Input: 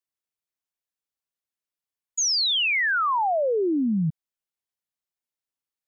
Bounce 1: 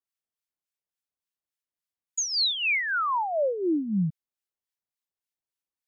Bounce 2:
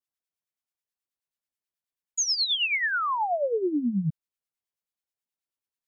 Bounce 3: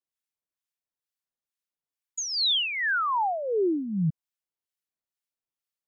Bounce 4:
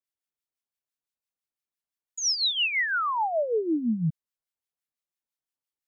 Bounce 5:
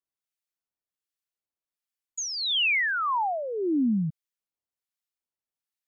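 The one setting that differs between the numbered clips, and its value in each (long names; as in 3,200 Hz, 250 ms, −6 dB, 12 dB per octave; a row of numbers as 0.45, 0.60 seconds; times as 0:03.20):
two-band tremolo in antiphase, speed: 3.5, 9.3, 2.2, 5.9, 1.3 Hertz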